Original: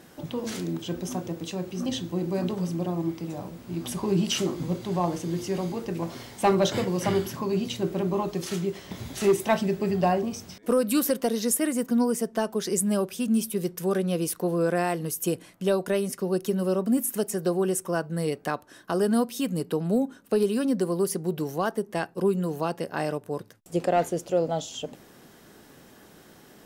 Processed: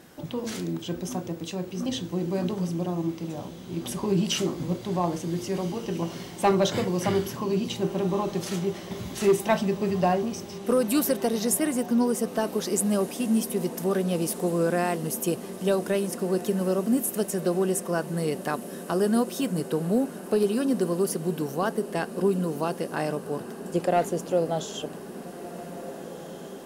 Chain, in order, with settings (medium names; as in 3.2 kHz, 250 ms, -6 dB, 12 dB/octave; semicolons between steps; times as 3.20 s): echo that smears into a reverb 1696 ms, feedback 74%, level -15 dB